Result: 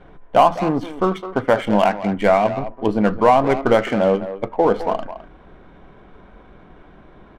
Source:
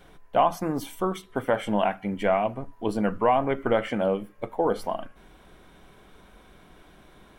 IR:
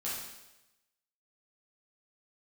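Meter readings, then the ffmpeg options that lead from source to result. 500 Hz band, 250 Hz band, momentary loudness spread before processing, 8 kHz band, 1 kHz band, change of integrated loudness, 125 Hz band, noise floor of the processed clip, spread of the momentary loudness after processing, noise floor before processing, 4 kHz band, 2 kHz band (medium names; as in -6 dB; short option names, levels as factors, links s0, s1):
+8.0 dB, +8.0 dB, 8 LU, no reading, +8.0 dB, +8.0 dB, +8.0 dB, -47 dBFS, 8 LU, -54 dBFS, +7.0 dB, +8.0 dB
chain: -filter_complex "[0:a]asplit=2[s0][s1];[s1]adelay=210,highpass=300,lowpass=3400,asoftclip=type=hard:threshold=0.119,volume=0.282[s2];[s0][s2]amix=inputs=2:normalize=0,adynamicsmooth=sensitivity=7:basefreq=1800,volume=2.51"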